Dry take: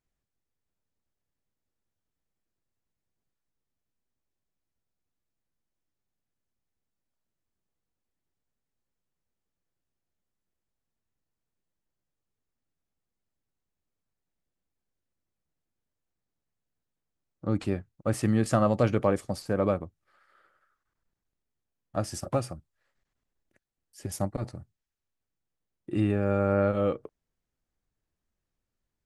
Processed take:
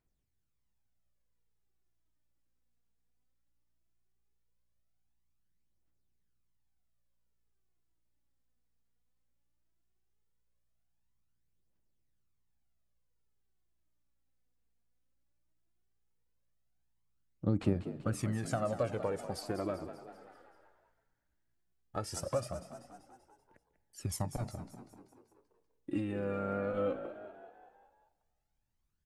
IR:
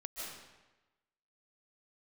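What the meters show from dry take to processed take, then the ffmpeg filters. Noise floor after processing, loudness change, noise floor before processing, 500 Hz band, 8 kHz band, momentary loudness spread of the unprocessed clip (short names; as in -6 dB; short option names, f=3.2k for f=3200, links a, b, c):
-79 dBFS, -8.5 dB, under -85 dBFS, -8.0 dB, -4.0 dB, 14 LU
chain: -filter_complex "[0:a]acompressor=threshold=-27dB:ratio=10,aphaser=in_gain=1:out_gain=1:delay=4.4:decay=0.6:speed=0.17:type=triangular,asplit=7[a][b][c][d][e][f][g];[b]adelay=193,afreqshift=58,volume=-12dB[h];[c]adelay=386,afreqshift=116,volume=-17.4dB[i];[d]adelay=579,afreqshift=174,volume=-22.7dB[j];[e]adelay=772,afreqshift=232,volume=-28.1dB[k];[f]adelay=965,afreqshift=290,volume=-33.4dB[l];[g]adelay=1158,afreqshift=348,volume=-38.8dB[m];[a][h][i][j][k][l][m]amix=inputs=7:normalize=0,asplit=2[n][o];[1:a]atrim=start_sample=2205,asetrate=31752,aresample=44100[p];[o][p]afir=irnorm=-1:irlink=0,volume=-21dB[q];[n][q]amix=inputs=2:normalize=0,volume=-4.5dB"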